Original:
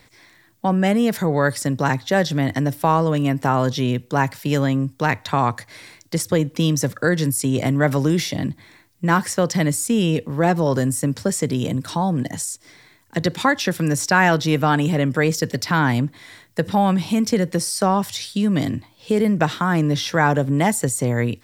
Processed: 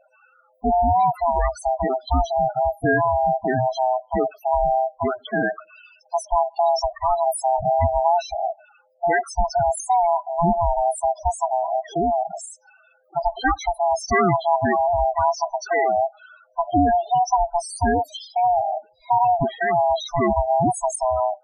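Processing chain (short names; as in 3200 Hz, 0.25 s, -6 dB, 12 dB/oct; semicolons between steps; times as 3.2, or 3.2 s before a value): band-swap scrambler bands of 500 Hz; loudest bins only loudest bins 8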